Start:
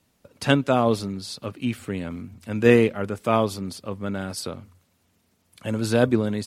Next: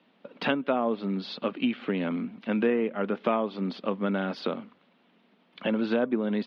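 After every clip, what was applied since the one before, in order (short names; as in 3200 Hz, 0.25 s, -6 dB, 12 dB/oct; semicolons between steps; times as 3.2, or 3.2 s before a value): treble ducked by the level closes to 2200 Hz, closed at -14.5 dBFS; compressor 6:1, threshold -28 dBFS, peak gain reduction 16.5 dB; elliptic band-pass 200–3400 Hz, stop band 40 dB; gain +6.5 dB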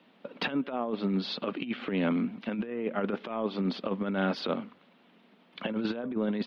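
negative-ratio compressor -29 dBFS, ratio -0.5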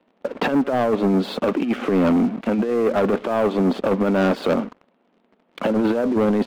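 band-pass 490 Hz, Q 0.73; sample leveller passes 3; gain +6.5 dB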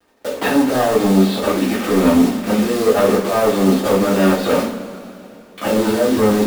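block floating point 3-bit; two-slope reverb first 0.36 s, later 3 s, from -19 dB, DRR -8 dB; gain -4 dB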